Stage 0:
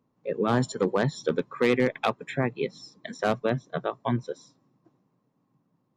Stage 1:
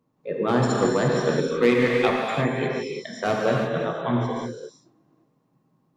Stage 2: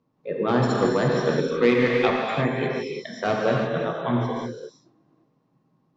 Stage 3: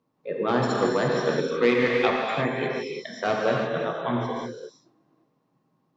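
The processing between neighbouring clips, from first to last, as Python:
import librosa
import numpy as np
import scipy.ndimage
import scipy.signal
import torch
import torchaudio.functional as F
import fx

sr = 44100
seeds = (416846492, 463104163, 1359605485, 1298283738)

y1 = fx.rev_gated(x, sr, seeds[0], gate_ms=380, shape='flat', drr_db=-3.0)
y2 = scipy.signal.sosfilt(scipy.signal.butter(4, 6000.0, 'lowpass', fs=sr, output='sos'), y1)
y3 = fx.low_shelf(y2, sr, hz=230.0, db=-7.5)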